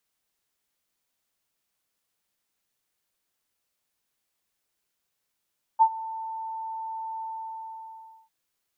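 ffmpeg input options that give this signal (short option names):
-f lavfi -i "aevalsrc='0.251*sin(2*PI*892*t)':d=2.5:s=44100,afade=t=in:d=0.027,afade=t=out:st=0.027:d=0.067:silence=0.106,afade=t=out:st=1.42:d=1.08"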